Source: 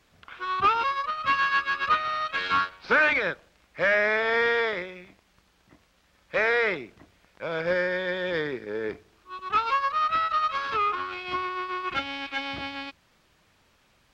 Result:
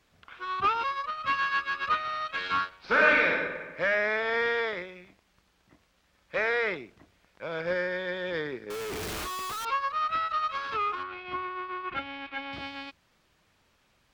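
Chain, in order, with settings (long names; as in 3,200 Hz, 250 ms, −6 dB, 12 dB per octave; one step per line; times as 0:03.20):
0:02.87–0:03.30: thrown reverb, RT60 1.4 s, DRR −3 dB
0:08.70–0:09.65: sign of each sample alone
0:11.03–0:12.53: low-pass filter 2,700 Hz 12 dB per octave
level −4 dB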